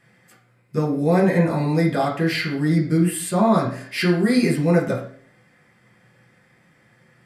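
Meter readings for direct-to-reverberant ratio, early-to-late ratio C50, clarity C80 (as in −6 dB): −3.5 dB, 7.5 dB, 12.0 dB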